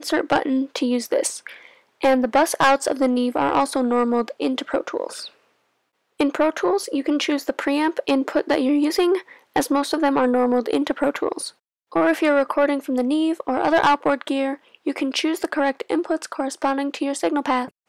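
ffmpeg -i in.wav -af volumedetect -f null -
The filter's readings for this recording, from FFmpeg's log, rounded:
mean_volume: -21.5 dB
max_volume: -8.9 dB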